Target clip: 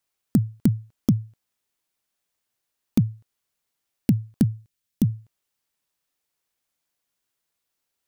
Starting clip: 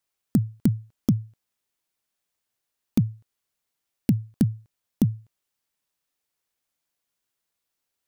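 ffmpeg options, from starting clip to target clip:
-filter_complex "[0:a]asettb=1/sr,asplit=3[a][b][c];[a]atrim=end=4.434[d];[b]atrim=start=4.43:end=5.1,asetpts=PTS-STARTPTS,afade=t=in:d=0.004:c=qsin,afade=t=out:st=0.666:d=0.004:c=qsin,equalizer=f=800:w=0.68:g=-9.5[e];[c]atrim=start=5.096[f];[d][e]acrossfade=d=0.004:c1=hsin:c2=qsin[g];[g][f]acrossfade=d=0.004:c1=qsin:c2=hsin,volume=1.5dB"

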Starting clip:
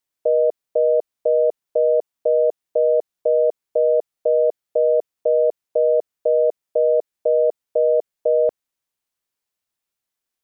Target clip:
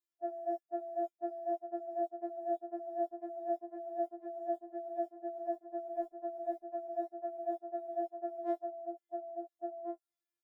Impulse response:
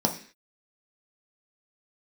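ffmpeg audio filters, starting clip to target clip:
-filter_complex "[0:a]afftfilt=real='re':imag='-im':win_size=2048:overlap=0.75,agate=range=-18dB:threshold=-30dB:ratio=16:detection=peak,highpass=280,lowshelf=f=360:g=9.5,asplit=2[a][b];[b]adelay=18,volume=-5.5dB[c];[a][c]amix=inputs=2:normalize=0,asplit=2[d][e];[e]adelay=1399,volume=-10dB,highshelf=f=4k:g=-31.5[f];[d][f]amix=inputs=2:normalize=0,areverse,acompressor=threshold=-30dB:ratio=20,areverse,equalizer=f=600:t=o:w=1.8:g=5.5,afftfilt=real='re*4*eq(mod(b,16),0)':imag='im*4*eq(mod(b,16),0)':win_size=2048:overlap=0.75,volume=8dB"

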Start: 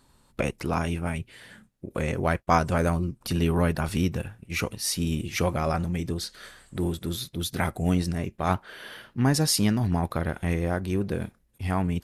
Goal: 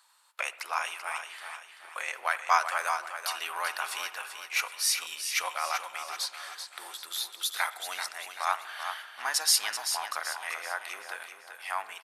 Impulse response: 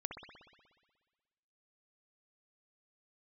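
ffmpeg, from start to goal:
-filter_complex "[0:a]highpass=f=920:w=0.5412,highpass=f=920:w=1.3066,aecho=1:1:386|772|1158|1544|1930:0.398|0.167|0.0702|0.0295|0.0124,asplit=2[a][b];[1:a]atrim=start_sample=2205,lowshelf=f=150:g=11.5[c];[b][c]afir=irnorm=-1:irlink=0,volume=-9.5dB[d];[a][d]amix=inputs=2:normalize=0"

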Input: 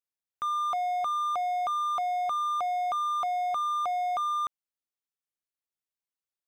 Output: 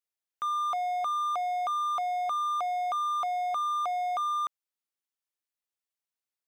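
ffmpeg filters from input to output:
-af "lowshelf=f=240:g=-11.5"

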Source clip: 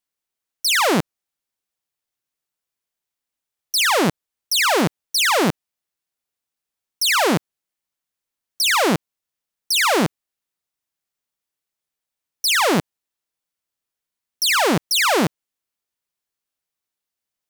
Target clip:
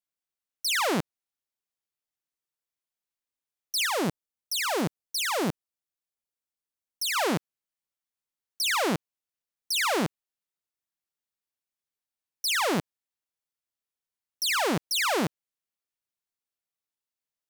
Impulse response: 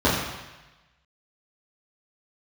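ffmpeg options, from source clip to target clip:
-filter_complex "[0:a]asettb=1/sr,asplit=3[a][b][c];[a]atrim=end=3.864[d];[b]atrim=start=3.86:end=7.16,asetpts=PTS-STARTPTS,afade=t=in:d=0.004:c=qsin,afade=t=out:st=3.296:d=0.004:c=qsin,equalizer=f=2k:w=0.43:g=-3.5[e];[c]atrim=start=7.156[f];[d][e]acrossfade=d=0.004:c1=hsin:c2=qsin[g];[g][f]acrossfade=d=0.004:c1=qsin:c2=hsin,volume=-8.5dB"

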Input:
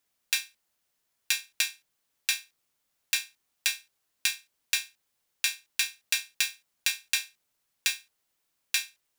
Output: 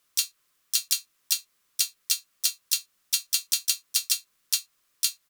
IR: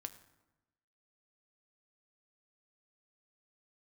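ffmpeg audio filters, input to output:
-filter_complex "[0:a]asplit=4[a][b][c][d];[b]asetrate=37084,aresample=44100,atempo=1.18921,volume=-11dB[e];[c]asetrate=55563,aresample=44100,atempo=0.793701,volume=-7dB[f];[d]asetrate=58866,aresample=44100,atempo=0.749154,volume=-16dB[g];[a][e][f][g]amix=inputs=4:normalize=0,acompressor=threshold=-38dB:ratio=1.5,asplit=2[h][i];[i]highpass=f=610:t=q:w=4.9[j];[1:a]atrim=start_sample=2205,atrim=end_sample=6174[k];[j][k]afir=irnorm=-1:irlink=0,volume=-6dB[l];[h][l]amix=inputs=2:normalize=0,asetrate=76440,aresample=44100,volume=6.5dB"

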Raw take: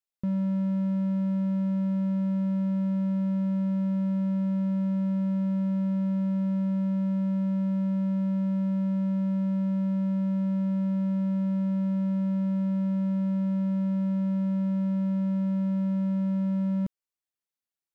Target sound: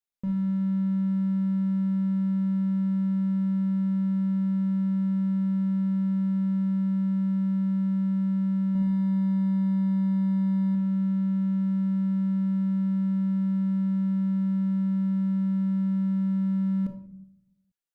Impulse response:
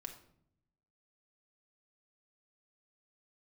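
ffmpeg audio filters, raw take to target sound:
-filter_complex "[0:a]asettb=1/sr,asplit=3[a][b][c];[a]atrim=end=8.654[d];[b]atrim=start=8.65:end=10.75,asetpts=PTS-STARTPTS,afade=t=in:d=0.004:c=qsin,afade=t=out:st=2.096:d=0.004:c=qsin,aecho=1:1:100|170|219|253.3|277.3:0.631|0.398|0.251|0.158|0.1,atrim=end_sample=92610[e];[c]atrim=start=10.746[f];[d][e]acrossfade=d=0.004:c1=hsin:c2=qsin[g];[g][f]acrossfade=d=0.004:c1=qsin:c2=hsin[h];[1:a]atrim=start_sample=2205[i];[h][i]afir=irnorm=-1:irlink=0,volume=2.5dB"

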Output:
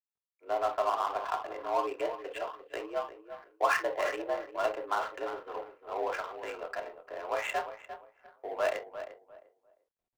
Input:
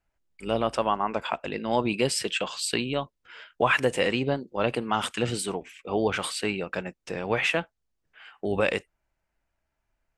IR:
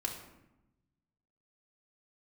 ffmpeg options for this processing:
-filter_complex "[0:a]highpass=f=260:t=q:w=0.5412,highpass=f=260:t=q:w=1.307,lowpass=f=3.2k:t=q:w=0.5176,lowpass=f=3.2k:t=q:w=0.7071,lowpass=f=3.2k:t=q:w=1.932,afreqshift=69,acrossover=split=440 2000:gain=0.0891 1 0.178[a][b][c];[a][b][c]amix=inputs=3:normalize=0,aecho=1:1:349|698|1047:0.282|0.0761|0.0205[d];[1:a]atrim=start_sample=2205,atrim=end_sample=3087[e];[d][e]afir=irnorm=-1:irlink=0,adynamicsmooth=sensitivity=5:basefreq=750,volume=-3.5dB" -ar 44100 -c:a adpcm_ima_wav

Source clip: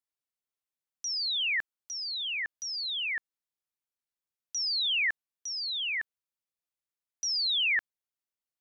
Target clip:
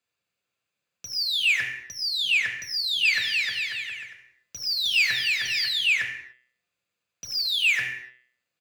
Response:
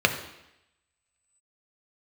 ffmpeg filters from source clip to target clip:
-filter_complex "[0:a]bandreject=f=125.6:t=h:w=4,bandreject=f=251.2:t=h:w=4,bandreject=f=376.8:t=h:w=4,bandreject=f=502.4:t=h:w=4,bandreject=f=628:t=h:w=4,bandreject=f=753.6:t=h:w=4,bandreject=f=879.2:t=h:w=4,bandreject=f=1.0048k:t=h:w=4,bandreject=f=1.1304k:t=h:w=4,bandreject=f=1.256k:t=h:w=4,bandreject=f=1.3816k:t=h:w=4,bandreject=f=1.5072k:t=h:w=4,bandreject=f=1.6328k:t=h:w=4,bandreject=f=1.7584k:t=h:w=4,bandreject=f=1.884k:t=h:w=4,bandreject=f=2.0096k:t=h:w=4,bandreject=f=2.1352k:t=h:w=4,bandreject=f=2.2608k:t=h:w=4,bandreject=f=2.3864k:t=h:w=4,bandreject=f=2.512k:t=h:w=4,bandreject=f=2.6376k:t=h:w=4,bandreject=f=2.7632k:t=h:w=4,bandreject=f=2.8888k:t=h:w=4,bandreject=f=3.0144k:t=h:w=4,bandreject=f=3.14k:t=h:w=4,bandreject=f=3.2656k:t=h:w=4,bandreject=f=3.3912k:t=h:w=4,bandreject=f=3.5168k:t=h:w=4,aeval=exprs='(tanh(79.4*val(0)+0.35)-tanh(0.35))/79.4':c=same,asplit=3[a][b][c];[a]afade=t=out:st=3.04:d=0.02[d];[b]aecho=1:1:310|542.5|716.9|847.7|945.7:0.631|0.398|0.251|0.158|0.1,afade=t=in:st=3.04:d=0.02,afade=t=out:st=5.67:d=0.02[e];[c]afade=t=in:st=5.67:d=0.02[f];[d][e][f]amix=inputs=3:normalize=0[g];[1:a]atrim=start_sample=2205,afade=t=out:st=0.36:d=0.01,atrim=end_sample=16317[h];[g][h]afir=irnorm=-1:irlink=0"

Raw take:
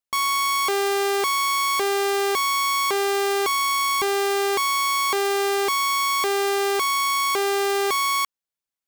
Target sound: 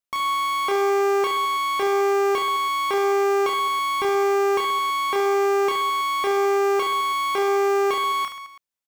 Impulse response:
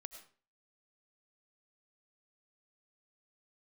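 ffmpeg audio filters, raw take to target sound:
-filter_complex "[0:a]acrossover=split=3200[a][b];[b]acompressor=threshold=-35dB:ratio=4:attack=1:release=60[c];[a][c]amix=inputs=2:normalize=0,aecho=1:1:30|72|130.8|213.1|328.4:0.631|0.398|0.251|0.158|0.1,volume=-1.5dB"

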